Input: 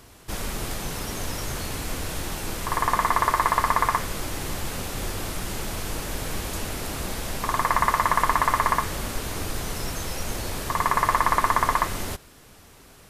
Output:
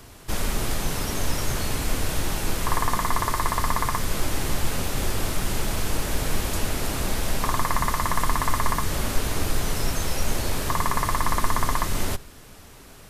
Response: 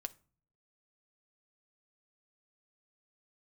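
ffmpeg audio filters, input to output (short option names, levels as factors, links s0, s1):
-filter_complex "[0:a]acrossover=split=350|3000[s0][s1][s2];[s1]acompressor=threshold=0.0501:ratio=6[s3];[s0][s3][s2]amix=inputs=3:normalize=0,asplit=2[s4][s5];[1:a]atrim=start_sample=2205,lowshelf=f=160:g=9.5[s6];[s5][s6]afir=irnorm=-1:irlink=0,volume=0.531[s7];[s4][s7]amix=inputs=2:normalize=0"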